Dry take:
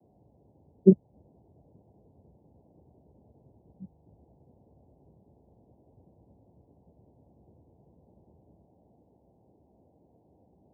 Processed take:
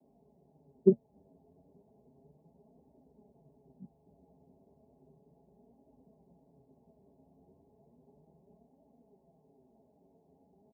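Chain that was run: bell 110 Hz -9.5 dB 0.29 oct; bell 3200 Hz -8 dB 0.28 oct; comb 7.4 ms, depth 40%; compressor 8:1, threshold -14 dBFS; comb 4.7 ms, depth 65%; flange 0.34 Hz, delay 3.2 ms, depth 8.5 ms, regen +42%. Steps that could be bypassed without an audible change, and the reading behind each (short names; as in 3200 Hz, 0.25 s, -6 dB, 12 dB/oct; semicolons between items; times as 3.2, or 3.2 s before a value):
bell 3200 Hz: input band ends at 810 Hz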